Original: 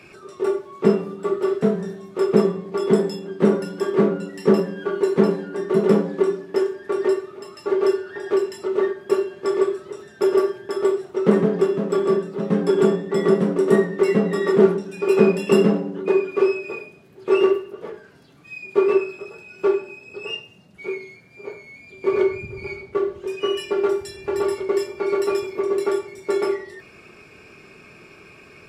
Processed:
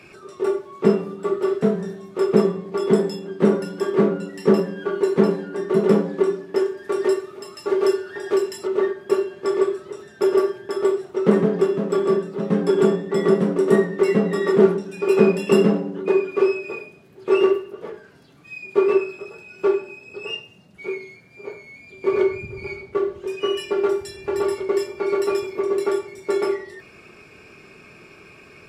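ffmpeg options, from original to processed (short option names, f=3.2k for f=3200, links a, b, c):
-filter_complex "[0:a]asettb=1/sr,asplit=3[a][b][c];[a]atrim=end=6.774[d];[b]atrim=start=6.77:end=8.67,asetpts=PTS-STARTPTS,afade=t=in:d=0.004:c=qsin,afade=t=out:st=1.896:d=0.004:c=qsin,highshelf=f=4.6k:g=7.5[e];[c]atrim=start=8.666[f];[d][e]acrossfade=d=0.004:c1=hsin:c2=qsin[g];[g][f]acrossfade=d=0.004:c1=qsin:c2=hsin"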